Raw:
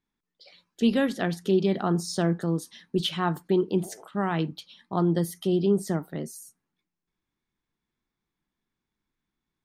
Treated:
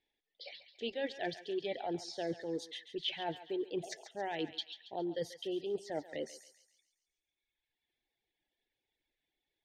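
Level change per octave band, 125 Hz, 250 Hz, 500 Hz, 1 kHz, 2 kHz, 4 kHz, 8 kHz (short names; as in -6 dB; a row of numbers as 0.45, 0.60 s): -24.0, -16.5, -10.5, -10.5, -9.0, -5.5, -13.0 dB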